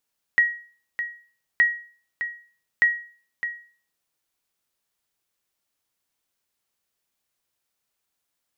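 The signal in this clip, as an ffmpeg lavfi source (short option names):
-f lavfi -i "aevalsrc='0.299*(sin(2*PI*1900*mod(t,1.22))*exp(-6.91*mod(t,1.22)/0.43)+0.299*sin(2*PI*1900*max(mod(t,1.22)-0.61,0))*exp(-6.91*max(mod(t,1.22)-0.61,0)/0.43))':d=3.66:s=44100"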